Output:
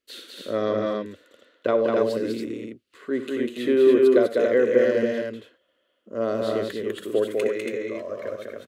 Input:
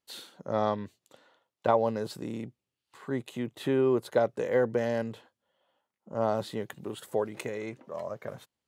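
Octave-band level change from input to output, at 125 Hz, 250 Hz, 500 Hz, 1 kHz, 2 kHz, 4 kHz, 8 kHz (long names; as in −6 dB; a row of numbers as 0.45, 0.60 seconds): −2.5 dB, +8.0 dB, +8.5 dB, −1.5 dB, +7.5 dB, +6.5 dB, can't be measured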